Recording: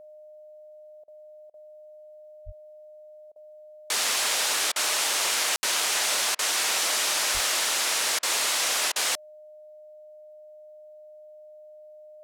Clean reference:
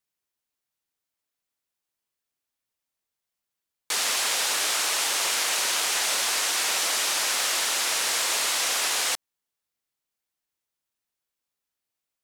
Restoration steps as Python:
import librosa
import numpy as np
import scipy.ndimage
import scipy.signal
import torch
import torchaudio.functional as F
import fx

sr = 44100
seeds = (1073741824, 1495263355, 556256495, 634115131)

y = fx.notch(x, sr, hz=610.0, q=30.0)
y = fx.highpass(y, sr, hz=140.0, slope=24, at=(2.45, 2.57), fade=0.02)
y = fx.highpass(y, sr, hz=140.0, slope=24, at=(7.33, 7.45), fade=0.02)
y = fx.fix_ambience(y, sr, seeds[0], print_start_s=1.04, print_end_s=1.54, start_s=5.56, end_s=5.63)
y = fx.fix_interpolate(y, sr, at_s=(1.04, 1.5, 3.32, 4.72, 6.35, 8.19, 8.92), length_ms=38.0)